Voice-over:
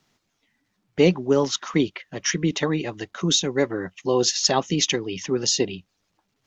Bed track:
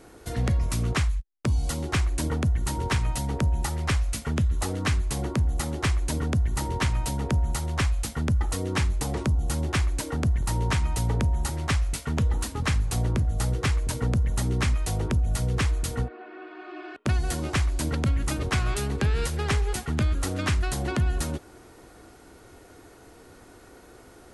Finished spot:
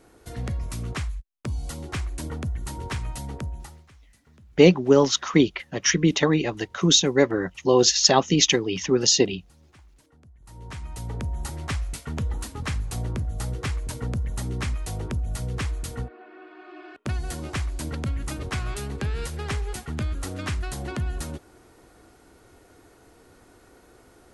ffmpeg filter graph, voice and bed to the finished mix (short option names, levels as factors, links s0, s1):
-filter_complex "[0:a]adelay=3600,volume=1.41[s0];[1:a]volume=9.44,afade=t=out:st=3.28:d=0.58:silence=0.0668344,afade=t=in:st=10.39:d=1.1:silence=0.0562341[s1];[s0][s1]amix=inputs=2:normalize=0"